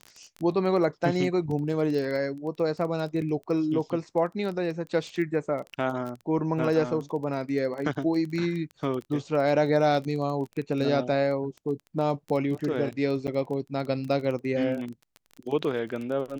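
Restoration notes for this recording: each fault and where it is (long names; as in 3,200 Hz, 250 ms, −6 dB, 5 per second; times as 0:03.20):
surface crackle 18 per second −32 dBFS
0:13.27–0:13.28: drop-out 8 ms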